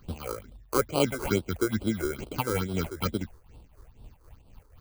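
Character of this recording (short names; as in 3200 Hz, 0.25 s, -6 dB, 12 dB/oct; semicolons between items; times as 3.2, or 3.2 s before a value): aliases and images of a low sample rate 1800 Hz, jitter 0%; tremolo triangle 4 Hz, depth 75%; phasing stages 6, 2.3 Hz, lowest notch 180–1900 Hz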